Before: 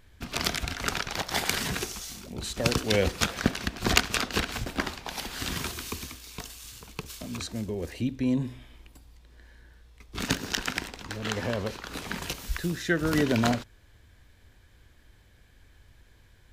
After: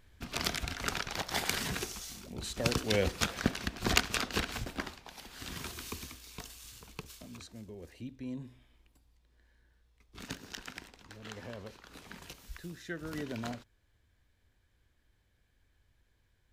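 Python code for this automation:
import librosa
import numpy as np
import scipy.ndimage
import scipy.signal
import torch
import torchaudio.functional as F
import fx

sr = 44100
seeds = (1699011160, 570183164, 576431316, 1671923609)

y = fx.gain(x, sr, db=fx.line((4.6, -5.0), (5.17, -14.5), (5.84, -6.0), (6.94, -6.0), (7.48, -14.5)))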